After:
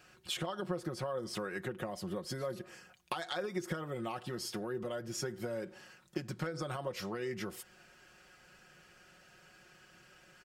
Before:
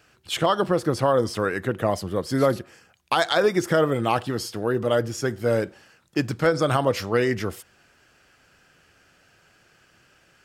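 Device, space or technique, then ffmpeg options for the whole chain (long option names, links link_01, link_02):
serial compression, leveller first: -af "acompressor=threshold=-24dB:ratio=3,acompressor=threshold=-33dB:ratio=6,aecho=1:1:5.5:0.65,volume=-3.5dB"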